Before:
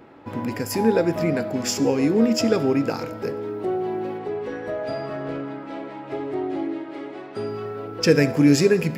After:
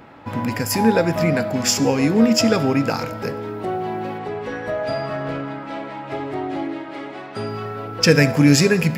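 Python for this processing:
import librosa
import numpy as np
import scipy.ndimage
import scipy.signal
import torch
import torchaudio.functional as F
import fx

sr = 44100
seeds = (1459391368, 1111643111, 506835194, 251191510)

y = fx.peak_eq(x, sr, hz=370.0, db=-9.0, octaves=0.96)
y = y * librosa.db_to_amplitude(7.0)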